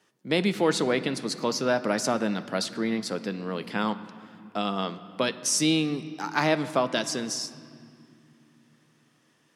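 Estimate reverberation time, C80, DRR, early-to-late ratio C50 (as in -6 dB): 2.4 s, 15.0 dB, 11.0 dB, 14.0 dB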